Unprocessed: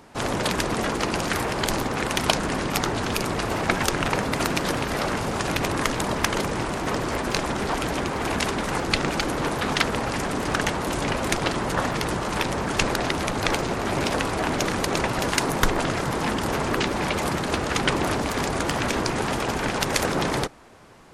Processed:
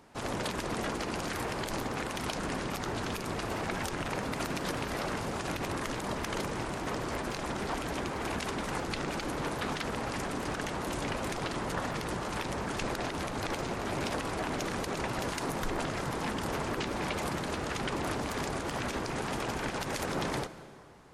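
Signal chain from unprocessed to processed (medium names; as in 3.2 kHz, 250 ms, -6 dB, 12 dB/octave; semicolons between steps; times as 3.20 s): peak limiter -14 dBFS, peak gain reduction 9 dB; reverberation RT60 2.4 s, pre-delay 118 ms, DRR 15 dB; trim -8.5 dB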